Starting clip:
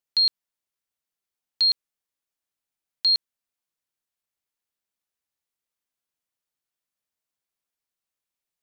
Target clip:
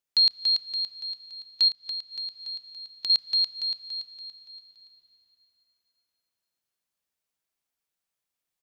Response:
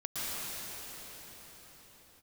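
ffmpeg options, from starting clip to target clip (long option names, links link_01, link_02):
-filter_complex "[0:a]aecho=1:1:285|570|855|1140|1425|1710:0.596|0.286|0.137|0.0659|0.0316|0.0152,asplit=2[link_01][link_02];[1:a]atrim=start_sample=2205,lowshelf=frequency=190:gain=5,adelay=31[link_03];[link_02][link_03]afir=irnorm=-1:irlink=0,volume=-23.5dB[link_04];[link_01][link_04]amix=inputs=2:normalize=0,asettb=1/sr,asplit=3[link_05][link_06][link_07];[link_05]atrim=end=1.684[link_08];[link_06]atrim=start=1.68:end=3.1,asetpts=PTS-STARTPTS,afade=type=in:duration=0.004:curve=qsin,afade=type=out:start_time=1.416:duration=0.004:curve=qsin,acompressor=threshold=-32dB:ratio=6[link_09];[link_07]atrim=start=3.096[link_10];[link_08][link_09]acrossfade=duration=0.004:curve1=hsin:curve2=qsin[link_11];[link_11][link_10]acrossfade=duration=0.004:curve1=qsin:curve2=hsin"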